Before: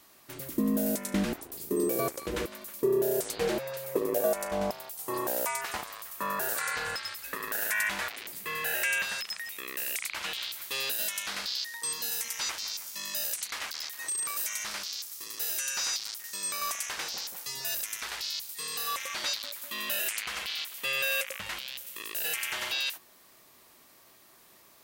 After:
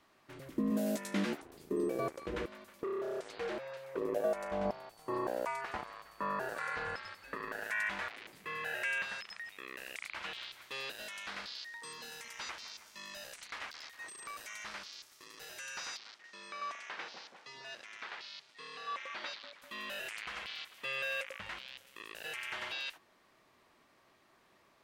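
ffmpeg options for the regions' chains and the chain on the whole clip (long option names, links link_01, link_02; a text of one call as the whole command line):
ffmpeg -i in.wav -filter_complex "[0:a]asettb=1/sr,asplit=3[link_01][link_02][link_03];[link_01]atrim=end=0.704[link_04];[link_02]atrim=start=0.7:end=1.42,asetpts=PTS-STARTPTS,afade=type=in:duration=0.004:curve=qsin,afade=type=out:start_time=0.716:duration=0.004:curve=qsin,highpass=170,highshelf=frequency=2700:gain=9,asplit=2[link_05][link_06];[link_06]adelay=14,volume=-5dB[link_07];[link_05][link_07]amix=inputs=2:normalize=0,atrim=end_sample=31752[link_08];[link_03]atrim=start=1.416[link_09];[link_04][link_08]acrossfade=duration=0.004:curve1=hsin:curve2=qsin[link_10];[link_10][link_09]acrossfade=duration=0.004:curve1=qsin:curve2=hsin,asettb=1/sr,asplit=3[link_11][link_12][link_13];[link_11]atrim=end=2.834[link_14];[link_12]atrim=start=2.83:end=3.98,asetpts=PTS-STARTPTS,afade=type=in:duration=0.004:curve=qsin,afade=type=out:start_time=1.146:duration=0.004:curve=qsin,acrossover=split=6800[link_15][link_16];[link_16]acompressor=threshold=-44dB:ratio=4:attack=1:release=60[link_17];[link_15][link_17]amix=inputs=2:normalize=0,volume=26dB,asoftclip=hard,volume=-26dB,lowshelf=frequency=310:gain=-9.5[link_18];[link_13]atrim=start=3.976[link_19];[link_14][link_18]acrossfade=duration=0.004:curve1=hsin:curve2=qsin[link_20];[link_20][link_19]acrossfade=duration=0.004:curve1=qsin:curve2=hsin,asettb=1/sr,asplit=3[link_21][link_22][link_23];[link_21]atrim=end=4.654[link_24];[link_22]atrim=start=4.65:end=7.64,asetpts=PTS-STARTPTS,afade=type=in:duration=0.004:curve=qsin,afade=type=out:start_time=2.986:duration=0.004:curve=qsin,tiltshelf=frequency=1500:gain=3.5,aeval=exprs='val(0)+0.00224*sin(2*PI*4500*n/s)':channel_layout=same[link_25];[link_23]atrim=start=7.636[link_26];[link_24][link_25]acrossfade=duration=0.004:curve1=hsin:curve2=qsin[link_27];[link_27][link_26]acrossfade=duration=0.004:curve1=qsin:curve2=hsin,asettb=1/sr,asplit=3[link_28][link_29][link_30];[link_28]atrim=end=15.974[link_31];[link_29]atrim=start=15.97:end=19.62,asetpts=PTS-STARTPTS,afade=type=in:duration=0.004:curve=qsin,afade=type=out:start_time=3.646:duration=0.004:curve=qsin,highpass=190,lowpass=4500,acrusher=bits=7:mode=log:mix=0:aa=0.000001[link_32];[link_30]atrim=start=19.616[link_33];[link_31][link_32]acrossfade=duration=0.004:curve1=hsin:curve2=qsin[link_34];[link_34][link_33]acrossfade=duration=0.004:curve1=qsin:curve2=hsin,lowpass=2000,aemphasis=mode=production:type=75fm,volume=-4.5dB" out.wav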